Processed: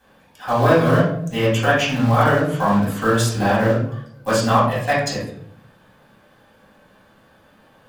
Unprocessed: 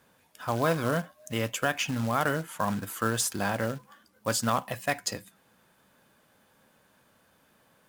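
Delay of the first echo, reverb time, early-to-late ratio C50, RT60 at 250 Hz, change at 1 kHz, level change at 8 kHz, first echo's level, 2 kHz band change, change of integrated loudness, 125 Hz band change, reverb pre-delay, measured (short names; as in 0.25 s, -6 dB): none, 0.65 s, 2.5 dB, 0.85 s, +11.5 dB, +1.5 dB, none, +10.0 dB, +11.0 dB, +14.0 dB, 3 ms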